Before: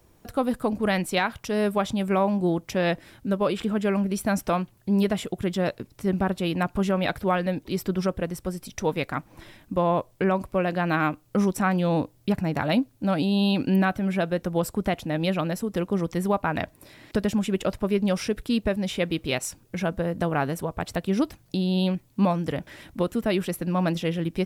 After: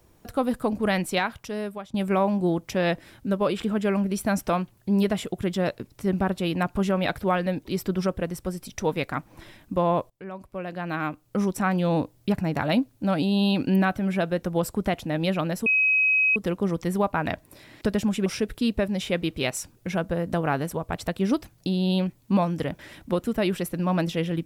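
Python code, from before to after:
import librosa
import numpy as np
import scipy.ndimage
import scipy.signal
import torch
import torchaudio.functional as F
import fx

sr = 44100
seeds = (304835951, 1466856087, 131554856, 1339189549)

y = fx.edit(x, sr, fx.fade_out_to(start_s=1.11, length_s=0.83, floor_db=-21.5),
    fx.fade_in_from(start_s=10.1, length_s=1.76, floor_db=-21.5),
    fx.insert_tone(at_s=15.66, length_s=0.7, hz=2540.0, db=-17.5),
    fx.cut(start_s=17.56, length_s=0.58), tone=tone)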